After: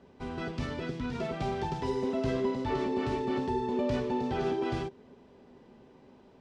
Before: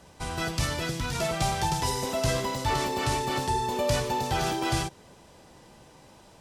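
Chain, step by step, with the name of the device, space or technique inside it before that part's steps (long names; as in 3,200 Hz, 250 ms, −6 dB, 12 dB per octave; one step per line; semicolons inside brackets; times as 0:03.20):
inside a cardboard box (low-pass filter 3,200 Hz 12 dB per octave; hollow resonant body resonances 250/390 Hz, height 15 dB, ringing for 60 ms)
level −8.5 dB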